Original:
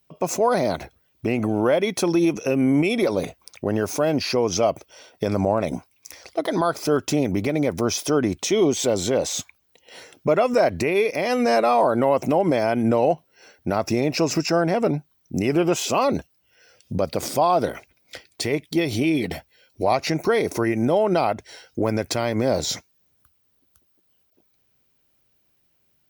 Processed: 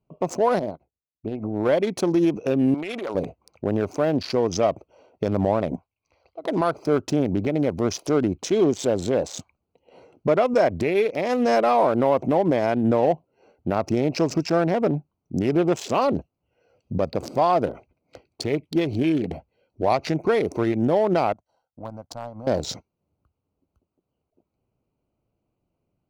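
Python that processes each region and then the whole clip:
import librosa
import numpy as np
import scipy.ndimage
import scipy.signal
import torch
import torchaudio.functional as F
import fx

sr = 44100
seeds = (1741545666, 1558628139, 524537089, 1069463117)

y = fx.chain(x, sr, fx.doubler(ms=19.0, db=-14),
    fx.upward_expand(threshold_db=-38.0, expansion=2.5), at=(0.59, 1.69))
y = fx.chain(y, sr, fx.highpass(hz=1000.0, slope=6),
    fx.peak_eq(hz=1400.0, db=9.5, octaves=0.78),
    fx.transient(attack_db=-9, sustain_db=5), at=(2.74, 3.15))
y = fx.chain(y, sr, fx.ladder_lowpass(hz=5300.0, resonance_pct=35),
    fx.peak_eq(hz=260.0, db=-10.0, octaves=1.7), at=(5.76, 6.44))
y = fx.chain(y, sr, fx.low_shelf(hz=260.0, db=-8.5),
    fx.fixed_phaser(hz=950.0, stages=4),
    fx.power_curve(exponent=1.4), at=(21.33, 22.47))
y = fx.wiener(y, sr, points=25)
y = fx.high_shelf(y, sr, hz=7900.0, db=-7.5)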